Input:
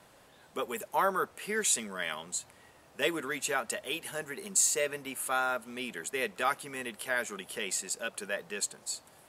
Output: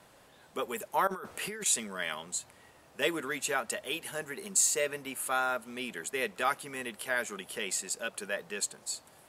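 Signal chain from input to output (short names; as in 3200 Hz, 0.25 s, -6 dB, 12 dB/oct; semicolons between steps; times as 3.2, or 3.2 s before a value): 1.07–1.66 negative-ratio compressor -39 dBFS, ratio -1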